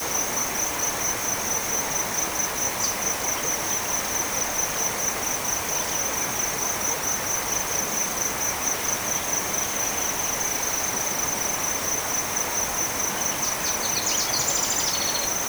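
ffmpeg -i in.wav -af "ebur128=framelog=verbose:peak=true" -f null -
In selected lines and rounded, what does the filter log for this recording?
Integrated loudness:
  I:         -23.1 LUFS
  Threshold: -33.1 LUFS
Loudness range:
  LRA:         0.9 LU
  Threshold: -43.2 LUFS
  LRA low:   -23.4 LUFS
  LRA high:  -22.5 LUFS
True peak:
  Peak:      -11.7 dBFS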